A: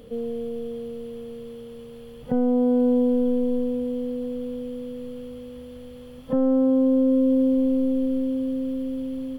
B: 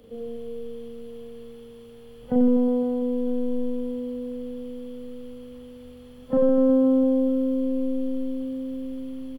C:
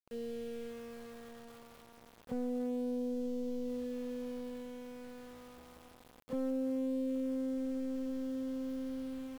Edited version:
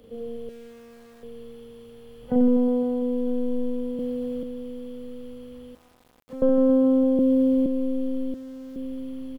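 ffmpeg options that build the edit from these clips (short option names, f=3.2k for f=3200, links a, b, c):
-filter_complex "[2:a]asplit=3[a][b][c];[0:a]asplit=2[d][e];[1:a]asplit=6[f][g][h][i][j][k];[f]atrim=end=0.492[l];[a]atrim=start=0.488:end=1.232[m];[g]atrim=start=1.228:end=3.992[n];[d]atrim=start=3.988:end=4.432[o];[h]atrim=start=4.428:end=5.752[p];[b]atrim=start=5.748:end=6.422[q];[i]atrim=start=6.418:end=7.192[r];[e]atrim=start=7.188:end=7.662[s];[j]atrim=start=7.658:end=8.342[t];[c]atrim=start=8.338:end=8.762[u];[k]atrim=start=8.758[v];[l][m]acrossfade=d=0.004:c1=hsin:c2=hsin[w];[w][n]acrossfade=d=0.004:c1=hsin:c2=hsin[x];[x][o]acrossfade=d=0.004:c1=hsin:c2=hsin[y];[y][p]acrossfade=d=0.004:c1=hsin:c2=hsin[z];[z][q]acrossfade=d=0.004:c1=hsin:c2=hsin[aa];[aa][r]acrossfade=d=0.004:c1=hsin:c2=hsin[ab];[ab][s]acrossfade=d=0.004:c1=hsin:c2=hsin[ac];[ac][t]acrossfade=d=0.004:c1=hsin:c2=hsin[ad];[ad][u]acrossfade=d=0.004:c1=hsin:c2=hsin[ae];[ae][v]acrossfade=d=0.004:c1=hsin:c2=hsin"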